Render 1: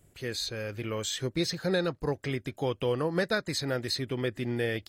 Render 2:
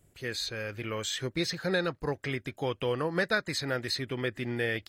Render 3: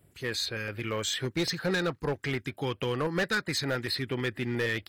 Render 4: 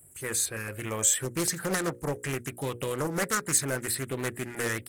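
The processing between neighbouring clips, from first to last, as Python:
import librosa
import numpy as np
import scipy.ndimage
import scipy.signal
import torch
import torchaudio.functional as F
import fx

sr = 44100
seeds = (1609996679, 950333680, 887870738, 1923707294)

y1 = fx.dynamic_eq(x, sr, hz=1800.0, q=0.73, threshold_db=-47.0, ratio=4.0, max_db=6)
y1 = F.gain(torch.from_numpy(y1), -2.5).numpy()
y2 = scipy.signal.sosfilt(scipy.signal.butter(2, 59.0, 'highpass', fs=sr, output='sos'), y1)
y2 = fx.filter_lfo_notch(y2, sr, shape='square', hz=4.4, low_hz=620.0, high_hz=6500.0, q=1.3)
y2 = np.clip(y2, -10.0 ** (-26.0 / 20.0), 10.0 ** (-26.0 / 20.0))
y2 = F.gain(torch.from_numpy(y2), 3.0).numpy()
y3 = fx.high_shelf_res(y2, sr, hz=6200.0, db=14.0, q=3.0)
y3 = fx.hum_notches(y3, sr, base_hz=60, count=9)
y3 = fx.doppler_dist(y3, sr, depth_ms=0.45)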